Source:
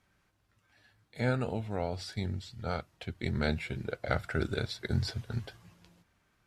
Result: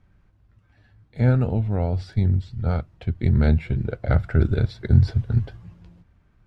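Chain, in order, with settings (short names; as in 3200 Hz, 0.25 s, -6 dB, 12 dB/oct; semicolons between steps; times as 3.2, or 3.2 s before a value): RIAA curve playback; gain +3 dB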